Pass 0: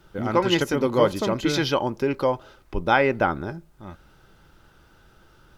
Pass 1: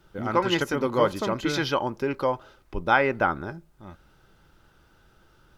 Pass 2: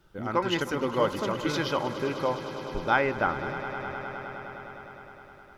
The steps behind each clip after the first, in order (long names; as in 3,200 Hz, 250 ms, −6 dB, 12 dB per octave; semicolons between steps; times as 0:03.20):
dynamic equaliser 1,300 Hz, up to +5 dB, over −37 dBFS, Q 1.1; level −4 dB
echo that builds up and dies away 103 ms, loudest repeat 5, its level −16 dB; level −3.5 dB